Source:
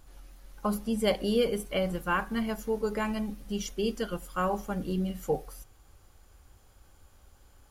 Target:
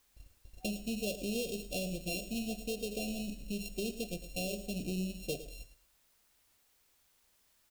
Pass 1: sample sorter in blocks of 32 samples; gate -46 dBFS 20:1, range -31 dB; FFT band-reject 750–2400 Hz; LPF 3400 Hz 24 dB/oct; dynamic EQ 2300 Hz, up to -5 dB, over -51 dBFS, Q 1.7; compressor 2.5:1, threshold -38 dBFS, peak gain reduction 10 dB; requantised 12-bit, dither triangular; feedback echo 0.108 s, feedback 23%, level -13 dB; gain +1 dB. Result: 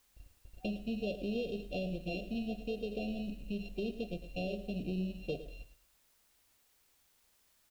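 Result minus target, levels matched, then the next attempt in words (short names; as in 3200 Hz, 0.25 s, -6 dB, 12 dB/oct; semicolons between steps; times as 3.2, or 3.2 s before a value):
4000 Hz band -5.5 dB; 2000 Hz band -2.0 dB
sample sorter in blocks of 32 samples; gate -46 dBFS 20:1, range -31 dB; FFT band-reject 750–2400 Hz; compressor 2.5:1, threshold -38 dBFS, peak gain reduction 10.5 dB; requantised 12-bit, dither triangular; feedback echo 0.108 s, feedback 23%, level -13 dB; gain +1 dB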